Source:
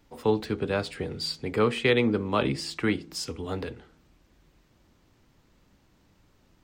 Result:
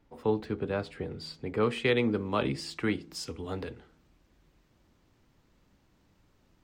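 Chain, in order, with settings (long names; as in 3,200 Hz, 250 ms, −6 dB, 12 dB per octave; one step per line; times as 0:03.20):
high-shelf EQ 3,100 Hz −11.5 dB, from 0:01.63 −2 dB
level −3.5 dB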